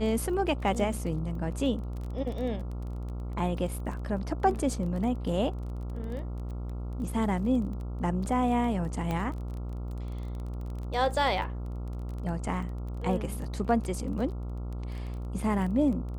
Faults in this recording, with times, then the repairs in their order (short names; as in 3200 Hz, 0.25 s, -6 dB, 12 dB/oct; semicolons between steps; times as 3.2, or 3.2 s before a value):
buzz 60 Hz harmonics 23 -35 dBFS
crackle 21/s -36 dBFS
9.11 pop -19 dBFS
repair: de-click; de-hum 60 Hz, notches 23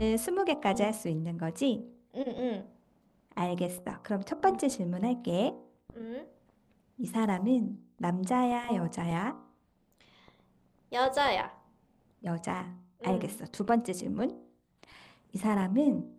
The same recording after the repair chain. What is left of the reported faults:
9.11 pop